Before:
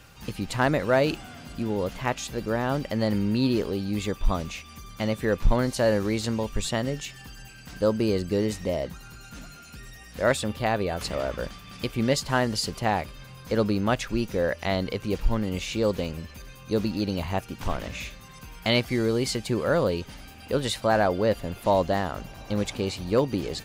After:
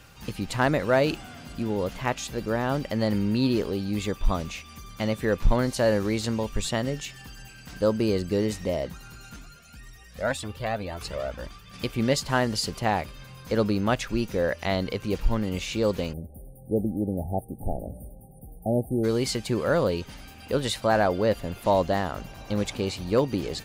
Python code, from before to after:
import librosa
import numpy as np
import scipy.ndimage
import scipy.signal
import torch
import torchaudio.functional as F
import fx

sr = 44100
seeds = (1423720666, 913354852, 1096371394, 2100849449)

y = fx.comb_cascade(x, sr, direction='rising', hz=1.9, at=(9.36, 11.74))
y = fx.brickwall_bandstop(y, sr, low_hz=870.0, high_hz=8500.0, at=(16.12, 19.03), fade=0.02)